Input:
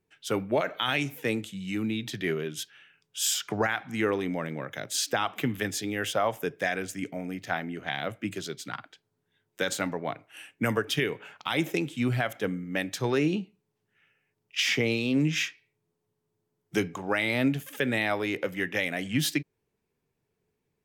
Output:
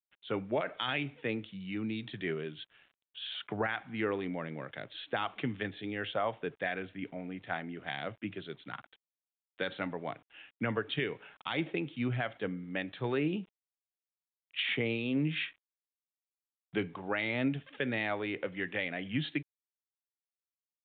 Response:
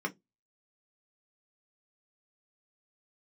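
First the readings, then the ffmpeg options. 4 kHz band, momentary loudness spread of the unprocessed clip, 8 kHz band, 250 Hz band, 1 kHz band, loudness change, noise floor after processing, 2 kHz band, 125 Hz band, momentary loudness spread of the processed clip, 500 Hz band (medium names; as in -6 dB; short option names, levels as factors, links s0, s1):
-7.5 dB, 9 LU, under -40 dB, -6.0 dB, -6.0 dB, -6.5 dB, under -85 dBFS, -6.0 dB, -6.0 dB, 11 LU, -6.0 dB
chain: -af "aeval=exprs='val(0)*gte(abs(val(0)),0.00224)':c=same,aresample=8000,aresample=44100,volume=0.501"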